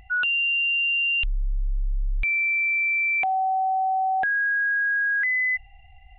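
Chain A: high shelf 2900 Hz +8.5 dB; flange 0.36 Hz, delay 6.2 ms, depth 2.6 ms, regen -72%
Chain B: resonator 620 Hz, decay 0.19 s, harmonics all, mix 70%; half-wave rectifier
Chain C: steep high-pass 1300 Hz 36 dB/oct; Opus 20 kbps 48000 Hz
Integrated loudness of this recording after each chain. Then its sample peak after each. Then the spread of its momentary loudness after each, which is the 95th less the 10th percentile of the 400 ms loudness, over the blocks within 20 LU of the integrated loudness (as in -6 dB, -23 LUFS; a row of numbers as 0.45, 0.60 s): -23.0, -37.0, -21.5 LUFS; -18.5, -27.0, -18.0 dBFS; 13, 9, 7 LU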